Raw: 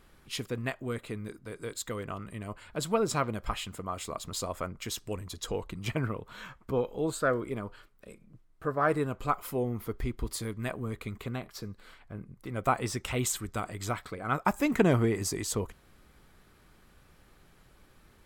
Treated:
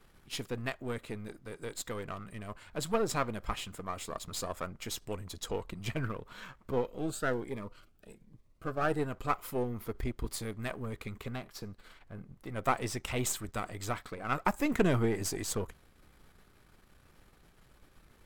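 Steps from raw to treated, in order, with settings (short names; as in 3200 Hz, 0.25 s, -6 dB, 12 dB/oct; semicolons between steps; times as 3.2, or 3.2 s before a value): half-wave gain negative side -7 dB; added noise brown -67 dBFS; 6.87–8.99 cascading phaser rising 1.2 Hz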